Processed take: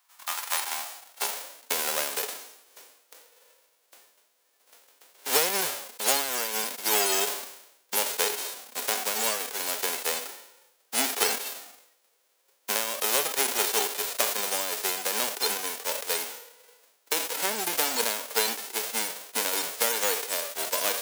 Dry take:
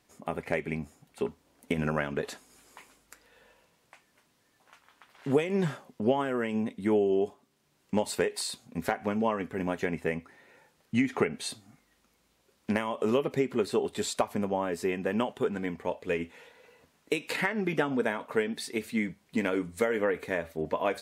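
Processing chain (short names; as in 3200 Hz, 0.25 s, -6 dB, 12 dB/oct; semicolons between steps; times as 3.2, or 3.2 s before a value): spectral whitening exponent 0.1; high-pass sweep 970 Hz -> 480 Hz, 0.4–1.74; sustainer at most 69 dB/s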